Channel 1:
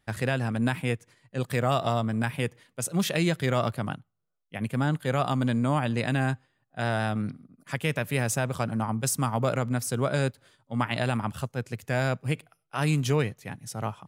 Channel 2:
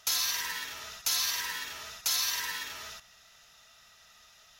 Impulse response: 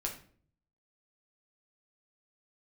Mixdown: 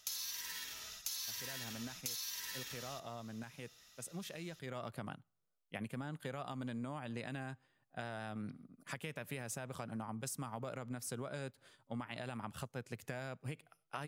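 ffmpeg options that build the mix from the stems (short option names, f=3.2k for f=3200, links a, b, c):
-filter_complex "[0:a]alimiter=limit=-18dB:level=0:latency=1:release=216,adelay=1200,volume=-3.5dB,afade=t=in:st=4.63:d=0.38:silence=0.251189[a];[1:a]equalizer=f=970:w=0.36:g=-10.5,volume=-1.5dB[b];[a][b]amix=inputs=2:normalize=0,equalizer=f=82:w=0.73:g=-5.5,acompressor=threshold=-40dB:ratio=5"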